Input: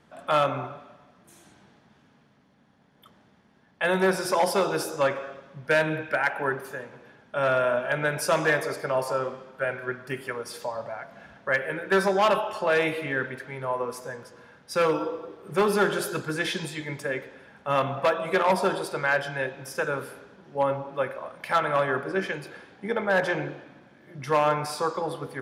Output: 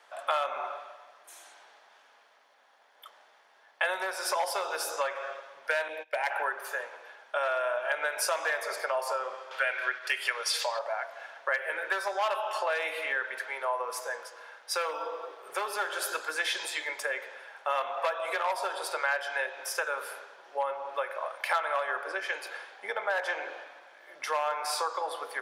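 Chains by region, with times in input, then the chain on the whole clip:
0:05.88–0:06.31: noise gate −34 dBFS, range −22 dB + parametric band 1,400 Hz −14.5 dB 0.49 octaves
0:09.51–0:10.79: meter weighting curve D + noise gate −40 dBFS, range −10 dB + upward compression, threshold −30 dBFS
whole clip: downward compressor, threshold −30 dBFS; high-pass filter 590 Hz 24 dB per octave; level +5 dB

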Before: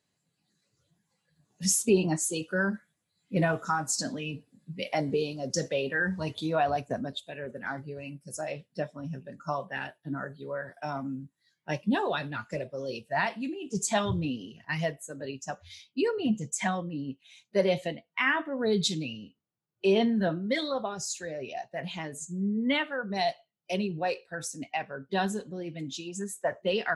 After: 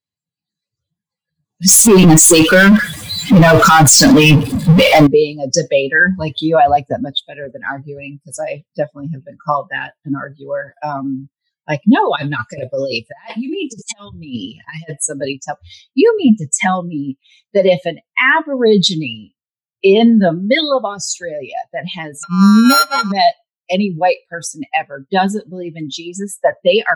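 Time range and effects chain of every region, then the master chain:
0:01.68–0:05.07: gain on one half-wave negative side −3 dB + power curve on the samples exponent 0.35
0:12.16–0:15.33: high-shelf EQ 5,000 Hz +8 dB + compressor whose output falls as the input rises −35 dBFS, ratio −0.5 + Butterworth low-pass 11,000 Hz 96 dB per octave
0:22.23–0:23.12: samples sorted by size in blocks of 32 samples + low-pass that shuts in the quiet parts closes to 2,900 Hz, open at −22.5 dBFS + comb filter 4.9 ms, depth 80%
whole clip: spectral dynamics exaggerated over time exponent 1.5; boost into a limiter +22 dB; level −1 dB

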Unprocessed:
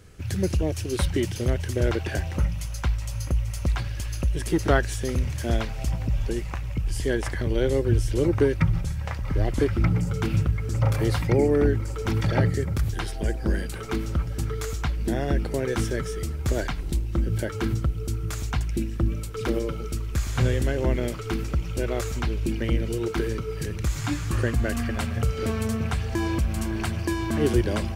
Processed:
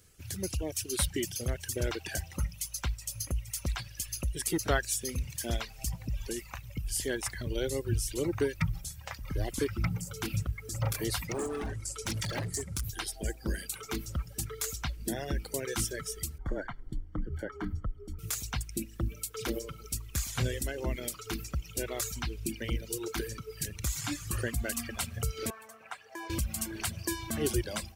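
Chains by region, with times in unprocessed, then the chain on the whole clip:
0:11.28–0:12.84: low-pass filter 9,600 Hz 24 dB per octave + high-shelf EQ 7,400 Hz +12 dB + hard clipping −21.5 dBFS
0:16.38–0:18.19: Savitzky-Golay smoothing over 41 samples + frequency shifter −30 Hz
0:25.50–0:26.30: high-pass filter 160 Hz + three-way crossover with the lows and the highs turned down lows −19 dB, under 440 Hz, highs −14 dB, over 2,100 Hz
whole clip: reverb reduction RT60 1.9 s; first-order pre-emphasis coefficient 0.8; automatic gain control gain up to 6 dB

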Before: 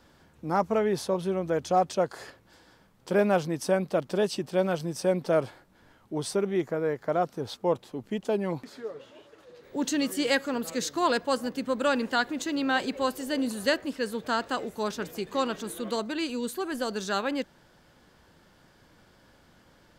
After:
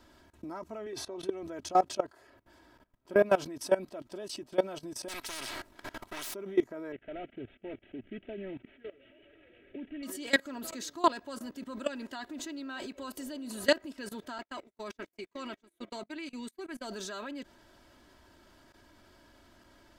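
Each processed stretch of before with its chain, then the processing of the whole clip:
0:00.86–0:01.43: high-shelf EQ 9,100 Hz −10 dB + comb filter 2.6 ms, depth 41% + multiband upward and downward compressor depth 70%
0:02.01–0:03.26: parametric band 6,200 Hz −7.5 dB 2.2 octaves + notch filter 4,100 Hz, Q 24
0:05.08–0:06.34: gain on one half-wave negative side −12 dB + every bin compressed towards the loudest bin 10 to 1
0:06.92–0:10.03: variable-slope delta modulation 16 kbit/s + phaser with its sweep stopped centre 2,500 Hz, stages 4
0:14.38–0:16.87: parametric band 2,200 Hz +10.5 dB 0.31 octaves + noise gate −33 dBFS, range −36 dB
whole clip: comb filter 3.1 ms, depth 69%; output level in coarse steps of 20 dB

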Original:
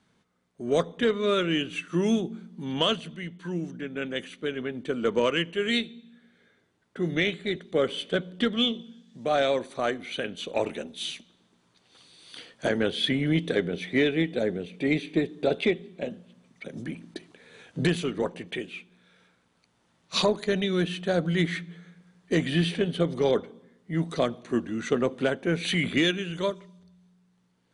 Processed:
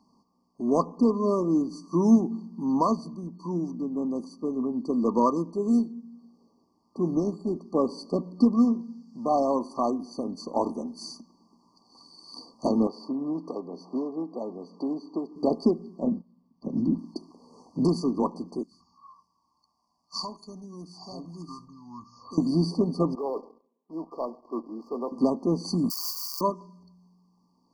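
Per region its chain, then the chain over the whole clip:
0:12.87–0:15.36: resonant band-pass 1,200 Hz, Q 0.87 + multiband upward and downward compressor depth 70%
0:16.04–0:16.99: noise gate −47 dBFS, range −16 dB + low-pass filter 4,300 Hz + low-shelf EQ 290 Hz +10.5 dB
0:18.63–0:22.38: guitar amp tone stack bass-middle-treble 5-5-5 + delay with pitch and tempo change per echo 83 ms, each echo −7 semitones, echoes 2, each echo −6 dB + flutter between parallel walls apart 11.3 metres, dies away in 0.2 s
0:23.15–0:25.12: four-pole ladder band-pass 620 Hz, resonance 30% + leveller curve on the samples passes 2
0:25.90–0:26.41: spike at every zero crossing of −19 dBFS + high-pass filter 1,200 Hz 24 dB per octave
whole clip: brick-wall band-stop 1,200–4,400 Hz; octave-band graphic EQ 125/250/500/1,000/2,000/4,000/8,000 Hz −9/+11/−7/+8/+7/+12/−10 dB

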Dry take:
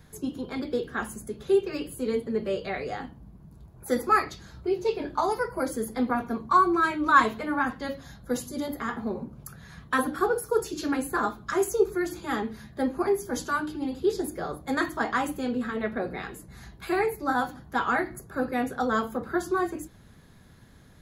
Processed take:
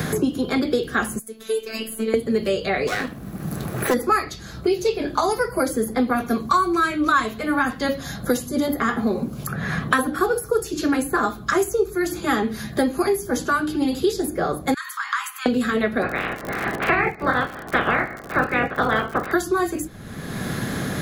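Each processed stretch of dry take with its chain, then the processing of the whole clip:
0:01.19–0:02.14: first-order pre-emphasis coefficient 0.9 + phases set to zero 222 Hz
0:02.87–0:03.94: lower of the sound and its delayed copy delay 0.49 ms + spectral tilt +2 dB per octave + notch filter 2,100 Hz, Q 25
0:14.74–0:15.46: downward compressor, threshold −35 dBFS + Butterworth high-pass 990 Hz 72 dB per octave
0:16.01–0:19.32: ceiling on every frequency bin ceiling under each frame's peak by 23 dB + low-pass filter 2,400 Hz 24 dB per octave + surface crackle 100 per second −42 dBFS
whole clip: high-shelf EQ 6,500 Hz +5 dB; notch filter 930 Hz, Q 7; multiband upward and downward compressor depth 100%; level +6 dB

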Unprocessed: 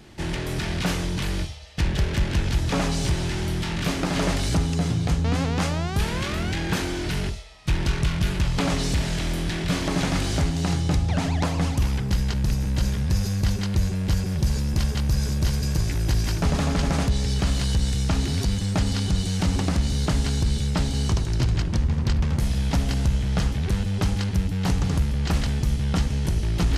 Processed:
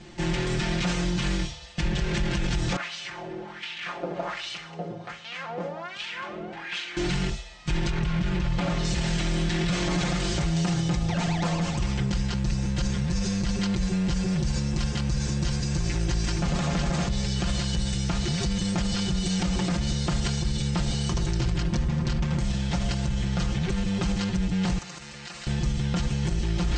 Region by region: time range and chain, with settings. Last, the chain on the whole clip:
0:02.76–0:06.97: auto-filter band-pass sine 1.3 Hz 470–3,100 Hz + repeating echo 63 ms, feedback 57%, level −14 dB
0:07.90–0:08.85: low-pass filter 2,600 Hz 6 dB per octave + downward compressor 2 to 1, threshold −23 dBFS
0:24.78–0:25.47: high-pass filter 1,400 Hz 6 dB per octave + notch filter 3,300 Hz, Q 10 + downward compressor, threshold −38 dBFS
whole clip: Chebyshev low-pass filter 8,300 Hz, order 6; comb filter 5.7 ms, depth 98%; brickwall limiter −17.5 dBFS

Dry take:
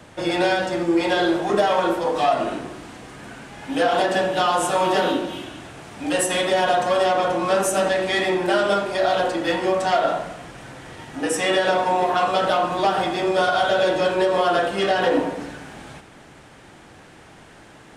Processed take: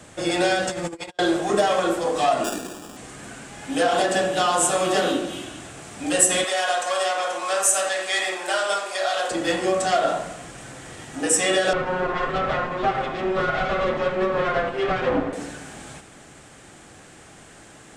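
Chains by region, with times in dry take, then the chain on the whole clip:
0:00.67–0:01.19: parametric band 300 Hz −13 dB 0.37 octaves + compressor whose output falls as the input rises −29 dBFS, ratio −0.5 + noise gate −34 dBFS, range −23 dB
0:02.44–0:02.97: Butterworth high-pass 160 Hz 72 dB per octave + sample-rate reduction 2,100 Hz
0:06.44–0:09.31: high-pass filter 700 Hz + flutter between parallel walls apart 9 metres, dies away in 0.29 s
0:11.73–0:15.33: lower of the sound and its delayed copy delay 7.6 ms + low-pass filter 2,200 Hz
whole clip: parametric band 7,800 Hz +11.5 dB 0.75 octaves; notch filter 930 Hz, Q 12; level −1 dB

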